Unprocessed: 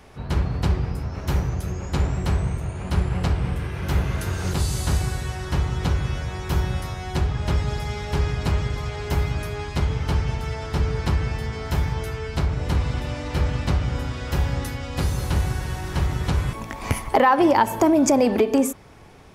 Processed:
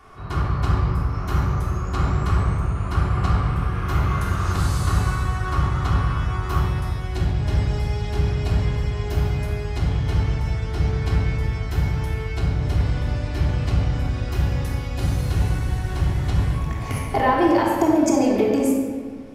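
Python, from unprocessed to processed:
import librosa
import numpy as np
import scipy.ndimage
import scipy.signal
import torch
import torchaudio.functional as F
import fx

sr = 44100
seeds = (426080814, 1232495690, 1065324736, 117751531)

y = fx.peak_eq(x, sr, hz=1200.0, db=fx.steps((0.0, 14.0), (6.58, -2.0)), octaves=0.55)
y = fx.room_shoebox(y, sr, seeds[0], volume_m3=2000.0, walls='mixed', distance_m=3.3)
y = y * 10.0 ** (-7.0 / 20.0)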